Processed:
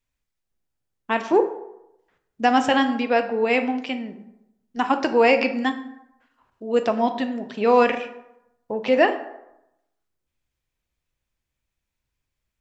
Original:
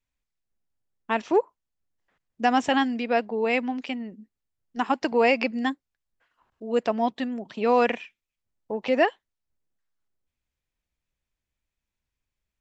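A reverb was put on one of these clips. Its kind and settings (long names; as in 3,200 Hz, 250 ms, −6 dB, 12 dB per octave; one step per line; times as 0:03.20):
dense smooth reverb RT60 0.85 s, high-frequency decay 0.55×, DRR 7 dB
level +3 dB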